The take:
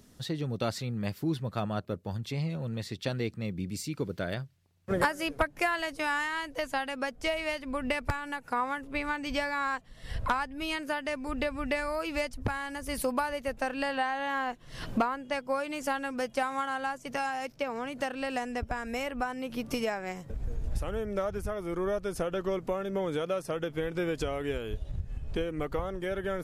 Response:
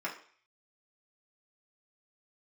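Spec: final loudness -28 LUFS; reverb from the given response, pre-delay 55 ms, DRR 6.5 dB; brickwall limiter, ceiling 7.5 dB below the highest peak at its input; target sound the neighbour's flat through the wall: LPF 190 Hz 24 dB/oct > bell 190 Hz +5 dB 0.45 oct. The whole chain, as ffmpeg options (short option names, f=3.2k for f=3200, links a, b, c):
-filter_complex "[0:a]alimiter=limit=-22dB:level=0:latency=1,asplit=2[a][b];[1:a]atrim=start_sample=2205,adelay=55[c];[b][c]afir=irnorm=-1:irlink=0,volume=-11.5dB[d];[a][d]amix=inputs=2:normalize=0,lowpass=f=190:w=0.5412,lowpass=f=190:w=1.3066,equalizer=f=190:t=o:w=0.45:g=5,volume=12.5dB"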